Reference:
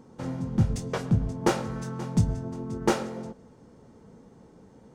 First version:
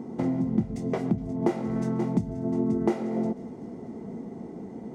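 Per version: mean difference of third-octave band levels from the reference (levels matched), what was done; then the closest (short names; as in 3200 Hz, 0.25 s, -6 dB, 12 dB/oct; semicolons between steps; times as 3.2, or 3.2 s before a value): 6.0 dB: compressor 6:1, threshold -37 dBFS, peak gain reduction 19 dB; small resonant body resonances 240/350/670/2000 Hz, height 16 dB, ringing for 25 ms; on a send: thin delay 0.246 s, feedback 73%, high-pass 3700 Hz, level -18.5 dB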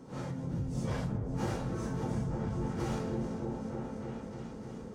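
8.5 dB: phase scrambler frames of 0.2 s; compressor 6:1, threshold -38 dBFS, peak gain reduction 19.5 dB; repeats that get brighter 0.305 s, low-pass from 400 Hz, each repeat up 1 oct, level 0 dB; gain +2.5 dB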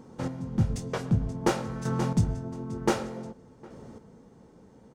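1.5 dB: chopper 0.54 Hz, depth 60%, duty 15%; outdoor echo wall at 130 m, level -23 dB; AGC gain up to 4 dB; gain +2.5 dB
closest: third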